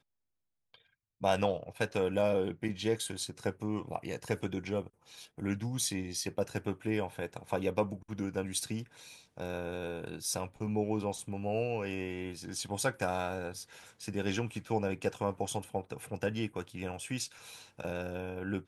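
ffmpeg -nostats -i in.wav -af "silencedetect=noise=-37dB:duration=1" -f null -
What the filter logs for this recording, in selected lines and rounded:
silence_start: 0.00
silence_end: 1.23 | silence_duration: 1.23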